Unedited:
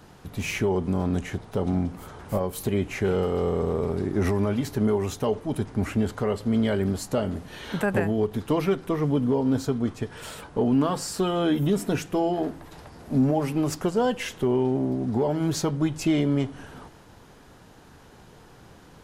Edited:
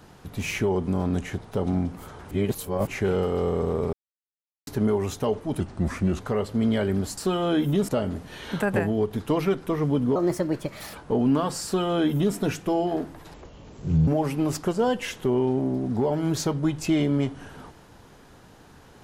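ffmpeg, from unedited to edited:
-filter_complex "[0:a]asplit=13[a][b][c][d][e][f][g][h][i][j][k][l][m];[a]atrim=end=2.312[n];[b]atrim=start=2.308:end=2.872,asetpts=PTS-STARTPTS,areverse[o];[c]atrim=start=2.868:end=3.93,asetpts=PTS-STARTPTS,afade=t=out:st=1.058:d=0.004:c=hsin[p];[d]atrim=start=3.93:end=4.67,asetpts=PTS-STARTPTS,volume=0[q];[e]atrim=start=4.67:end=5.604,asetpts=PTS-STARTPTS,afade=t=in:d=0.004:c=hsin[r];[f]atrim=start=5.6:end=6.12,asetpts=PTS-STARTPTS,asetrate=37926,aresample=44100,atrim=end_sample=26665,asetpts=PTS-STARTPTS[s];[g]atrim=start=6.116:end=7.092[t];[h]atrim=start=11.108:end=11.822[u];[i]atrim=start=7.088:end=9.364[v];[j]atrim=start=9.36:end=10.4,asetpts=PTS-STARTPTS,asetrate=58653,aresample=44100,atrim=end_sample=34484,asetpts=PTS-STARTPTS[w];[k]atrim=start=10.396:end=12.804[x];[l]atrim=start=12.8:end=13.25,asetpts=PTS-STARTPTS,asetrate=26901,aresample=44100[y];[m]atrim=start=13.246[z];[n][o]acrossfade=d=0.004:c1=hsin:c2=hsin[aa];[p][q][r]concat=n=3:v=0:a=1[ab];[aa][ab]acrossfade=d=0.004:c1=hsin:c2=hsin[ac];[ac][s]acrossfade=d=0.004:c1=hsin:c2=hsin[ad];[ad][t]acrossfade=d=0.004:c1=hsin:c2=hsin[ae];[ae][u]acrossfade=d=0.004:c1=hsin:c2=hsin[af];[af][v]acrossfade=d=0.004:c1=hsin:c2=hsin[ag];[ag][w]acrossfade=d=0.004:c1=hsin:c2=hsin[ah];[ah][x]acrossfade=d=0.004:c1=hsin:c2=hsin[ai];[ai][y]acrossfade=d=0.004:c1=hsin:c2=hsin[aj];[aj][z]acrossfade=d=0.004:c1=hsin:c2=hsin"

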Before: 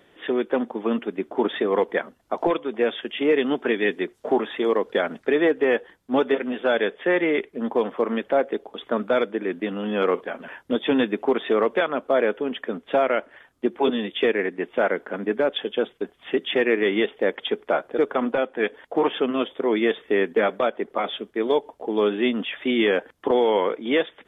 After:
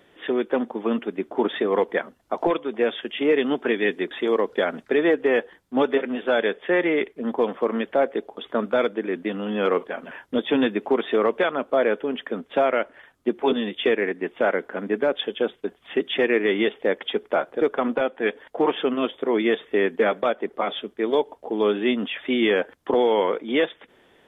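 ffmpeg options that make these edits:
-filter_complex "[0:a]asplit=2[a][b];[a]atrim=end=4.112[c];[b]atrim=start=4.478[d];[c][d]acrossfade=d=0.004:c1=hsin:c2=hsin"

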